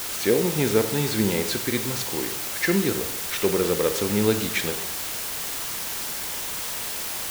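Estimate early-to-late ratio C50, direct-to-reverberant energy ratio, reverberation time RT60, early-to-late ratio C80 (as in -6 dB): 10.5 dB, 8.5 dB, 0.75 s, 12.5 dB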